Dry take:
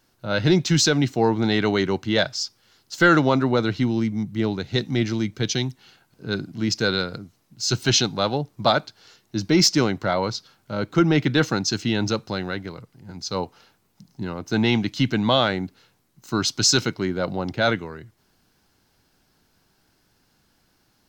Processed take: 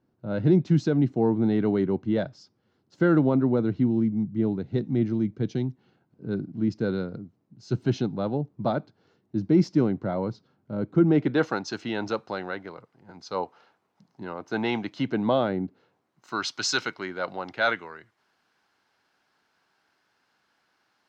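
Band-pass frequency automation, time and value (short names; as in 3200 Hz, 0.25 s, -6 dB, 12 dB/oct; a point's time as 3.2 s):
band-pass, Q 0.75
10.98 s 220 Hz
11.52 s 820 Hz
14.85 s 820 Hz
15.59 s 260 Hz
16.37 s 1400 Hz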